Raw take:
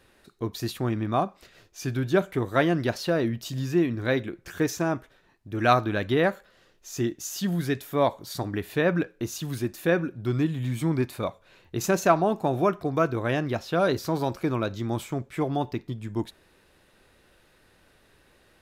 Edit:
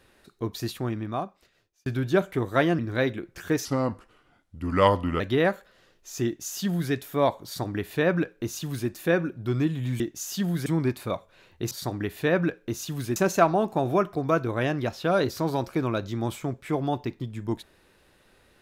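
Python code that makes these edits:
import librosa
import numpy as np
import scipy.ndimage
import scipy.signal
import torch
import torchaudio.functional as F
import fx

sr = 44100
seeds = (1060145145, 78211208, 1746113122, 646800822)

y = fx.edit(x, sr, fx.fade_out_span(start_s=0.56, length_s=1.3),
    fx.cut(start_s=2.79, length_s=1.1),
    fx.speed_span(start_s=4.75, length_s=1.24, speed=0.8),
    fx.duplicate(start_s=7.04, length_s=0.66, to_s=10.79),
    fx.duplicate(start_s=8.24, length_s=1.45, to_s=11.84), tone=tone)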